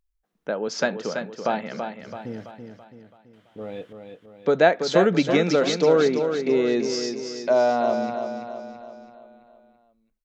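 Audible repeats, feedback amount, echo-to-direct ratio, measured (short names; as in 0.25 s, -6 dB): 5, 49%, -6.0 dB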